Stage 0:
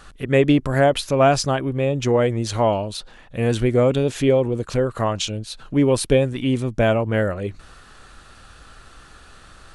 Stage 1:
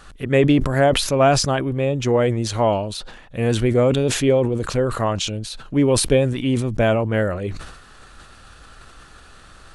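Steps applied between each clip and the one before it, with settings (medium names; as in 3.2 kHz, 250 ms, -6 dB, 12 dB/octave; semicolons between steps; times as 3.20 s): decay stretcher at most 62 dB/s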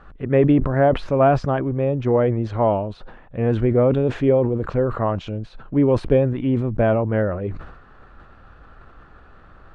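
low-pass 1.4 kHz 12 dB/octave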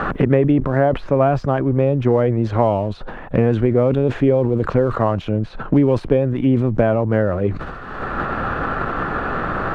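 in parallel at -8 dB: hysteresis with a dead band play -35 dBFS; on the sum: three bands compressed up and down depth 100%; trim -1 dB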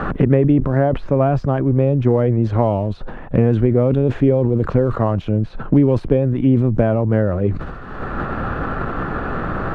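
bass shelf 410 Hz +7.5 dB; trim -4 dB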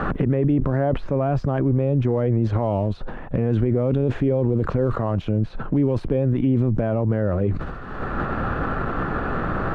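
peak limiter -10 dBFS, peak gain reduction 8.5 dB; trim -1.5 dB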